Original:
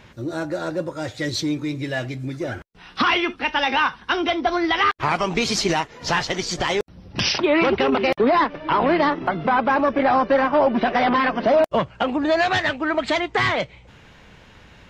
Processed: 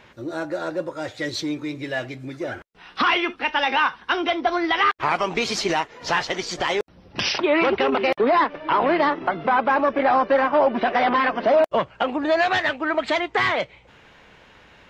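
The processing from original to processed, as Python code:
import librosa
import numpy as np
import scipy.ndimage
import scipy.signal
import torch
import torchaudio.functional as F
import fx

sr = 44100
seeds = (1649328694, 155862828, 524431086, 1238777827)

y = fx.bass_treble(x, sr, bass_db=-9, treble_db=-5)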